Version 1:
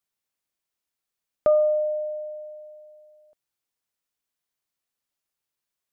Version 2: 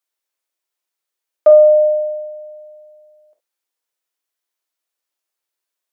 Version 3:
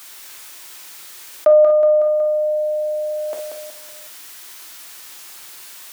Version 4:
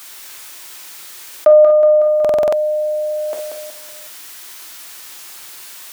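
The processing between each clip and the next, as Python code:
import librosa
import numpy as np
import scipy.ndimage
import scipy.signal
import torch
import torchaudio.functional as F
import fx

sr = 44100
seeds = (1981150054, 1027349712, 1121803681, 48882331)

y1 = scipy.signal.sosfilt(scipy.signal.butter(4, 330.0, 'highpass', fs=sr, output='sos'), x)
y1 = fx.dynamic_eq(y1, sr, hz=650.0, q=2.4, threshold_db=-33.0, ratio=4.0, max_db=8)
y1 = fx.rev_gated(y1, sr, seeds[0], gate_ms=80, shape='flat', drr_db=4.0)
y1 = y1 * 10.0 ** (2.0 / 20.0)
y2 = fx.peak_eq(y1, sr, hz=530.0, db=-8.0, octaves=1.2)
y2 = fx.echo_feedback(y2, sr, ms=185, feedback_pct=39, wet_db=-8.0)
y2 = fx.env_flatten(y2, sr, amount_pct=70)
y2 = y2 * 10.0 ** (3.0 / 20.0)
y3 = fx.buffer_glitch(y2, sr, at_s=(2.2,), block=2048, repeats=6)
y3 = y3 * 10.0 ** (3.0 / 20.0)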